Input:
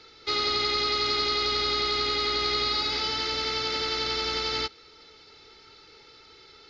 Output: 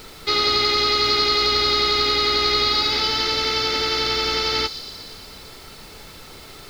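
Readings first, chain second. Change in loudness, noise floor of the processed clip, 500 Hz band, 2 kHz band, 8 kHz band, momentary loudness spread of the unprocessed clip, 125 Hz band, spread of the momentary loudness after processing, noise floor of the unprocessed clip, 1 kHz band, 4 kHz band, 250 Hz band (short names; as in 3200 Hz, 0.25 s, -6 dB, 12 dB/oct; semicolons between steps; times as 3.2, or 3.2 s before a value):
+7.5 dB, -42 dBFS, +7.0 dB, +7.0 dB, n/a, 3 LU, +7.5 dB, 9 LU, -53 dBFS, +7.0 dB, +7.5 dB, +7.0 dB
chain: thin delay 0.118 s, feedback 72%, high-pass 5400 Hz, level -8 dB; added noise pink -50 dBFS; gain +7 dB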